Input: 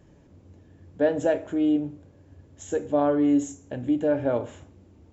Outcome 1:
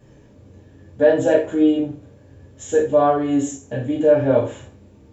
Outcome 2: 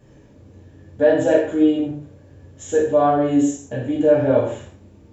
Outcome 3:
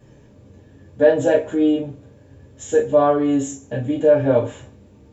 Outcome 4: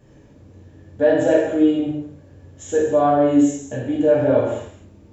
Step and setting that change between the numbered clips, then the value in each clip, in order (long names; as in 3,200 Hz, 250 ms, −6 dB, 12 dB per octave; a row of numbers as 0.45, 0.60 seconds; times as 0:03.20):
reverb whose tail is shaped and stops, gate: 120, 190, 80, 300 milliseconds